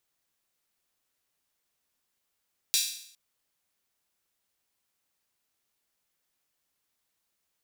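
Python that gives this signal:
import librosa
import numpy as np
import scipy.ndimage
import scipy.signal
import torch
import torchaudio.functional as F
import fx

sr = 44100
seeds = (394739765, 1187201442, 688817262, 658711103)

y = fx.drum_hat_open(sr, length_s=0.41, from_hz=3800.0, decay_s=0.65)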